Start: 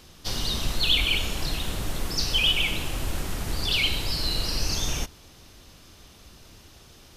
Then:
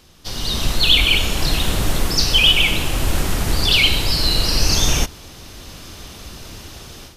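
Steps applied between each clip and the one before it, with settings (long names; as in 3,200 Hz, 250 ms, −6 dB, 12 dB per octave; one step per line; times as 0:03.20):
automatic gain control gain up to 14 dB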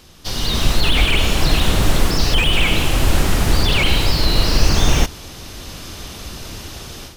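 slew-rate limiting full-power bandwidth 220 Hz
level +4 dB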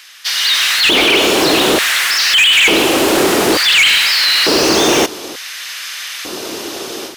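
auto-filter high-pass square 0.56 Hz 360–1,800 Hz
hard clipping −15.5 dBFS, distortion −13 dB
level +8.5 dB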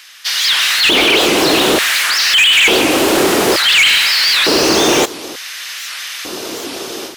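wow of a warped record 78 rpm, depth 250 cents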